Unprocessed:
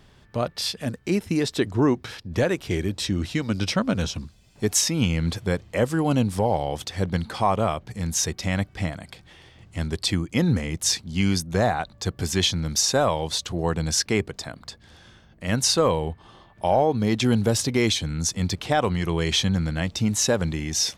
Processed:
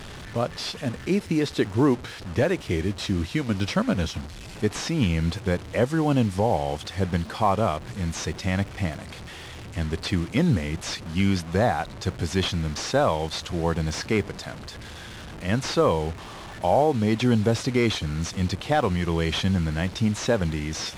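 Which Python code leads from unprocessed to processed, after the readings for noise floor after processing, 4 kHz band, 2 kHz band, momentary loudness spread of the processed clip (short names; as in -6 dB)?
-40 dBFS, -5.0 dB, -0.5 dB, 11 LU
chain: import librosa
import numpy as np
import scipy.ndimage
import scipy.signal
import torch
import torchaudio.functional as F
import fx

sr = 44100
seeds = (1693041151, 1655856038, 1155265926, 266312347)

y = fx.delta_mod(x, sr, bps=64000, step_db=-32.5)
y = fx.high_shelf(y, sr, hz=7300.0, db=-11.0)
y = fx.dmg_crackle(y, sr, seeds[0], per_s=59.0, level_db=-42.0)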